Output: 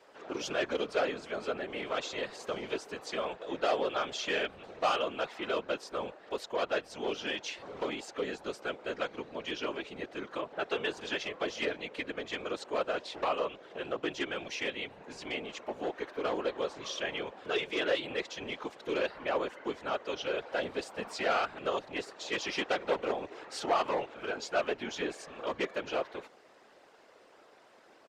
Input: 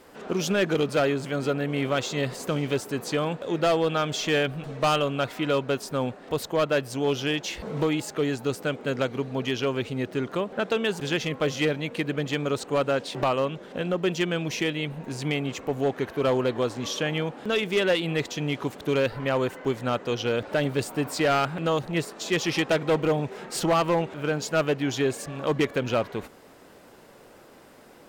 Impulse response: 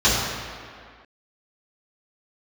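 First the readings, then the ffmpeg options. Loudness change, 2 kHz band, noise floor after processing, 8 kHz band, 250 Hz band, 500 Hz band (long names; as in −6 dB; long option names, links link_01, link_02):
−8.5 dB, −6.0 dB, −59 dBFS, −10.5 dB, −13.0 dB, −8.0 dB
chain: -filter_complex "[0:a]acrossover=split=350 7000:gain=0.1 1 0.112[link_01][link_02][link_03];[link_01][link_02][link_03]amix=inputs=3:normalize=0,aresample=32000,aresample=44100,afftfilt=real='hypot(re,im)*cos(2*PI*random(0))':imag='hypot(re,im)*sin(2*PI*random(1))':win_size=512:overlap=0.75"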